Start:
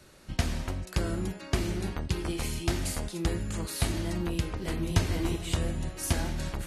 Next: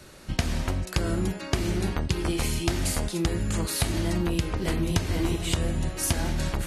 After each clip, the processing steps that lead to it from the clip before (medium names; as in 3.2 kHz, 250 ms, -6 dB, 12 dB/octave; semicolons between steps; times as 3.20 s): compression 6:1, threshold -28 dBFS, peak gain reduction 10.5 dB; trim +7 dB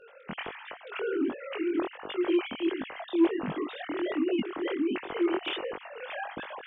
formants replaced by sine waves; chorus 1.4 Hz, delay 19 ms, depth 4.9 ms; saturation -11.5 dBFS, distortion -22 dB; trim -1.5 dB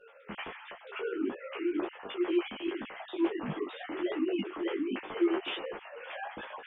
three-phase chorus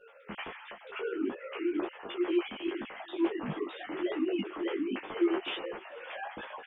echo from a far wall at 75 m, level -22 dB